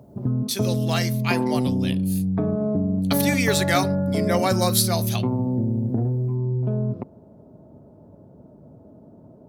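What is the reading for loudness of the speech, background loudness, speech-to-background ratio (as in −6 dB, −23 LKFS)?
−25.5 LKFS, −24.0 LKFS, −1.5 dB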